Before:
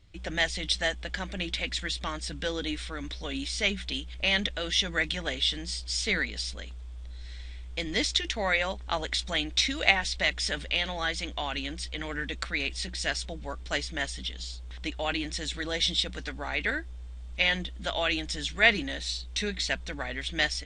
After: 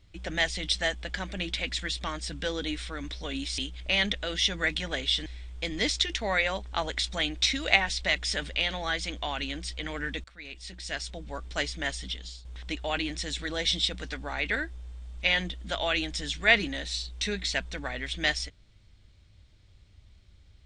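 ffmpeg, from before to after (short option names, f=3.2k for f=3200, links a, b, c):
-filter_complex "[0:a]asplit=5[a][b][c][d][e];[a]atrim=end=3.582[f];[b]atrim=start=3.918:end=5.602[g];[c]atrim=start=7.408:end=12.39,asetpts=PTS-STARTPTS,afade=t=out:st=4.978:d=0.004:c=hsin:silence=0.0707946[h];[d]atrim=start=12.39:end=14.6,asetpts=PTS-STARTPTS,afade=t=in:d=1.22:silence=0.0707946,afade=t=out:st=1.87:d=0.34:silence=0.334965[i];[e]atrim=start=14.6,asetpts=PTS-STARTPTS,afade=t=in:d=0.004:c=hsin:silence=0.334965[j];[f][g]acrossfade=d=0.004:c1=hsin:c2=hsin[k];[h][i][j]concat=n=3:v=0:a=1[l];[k][l]acrossfade=d=0.004:c1=hsin:c2=hsin"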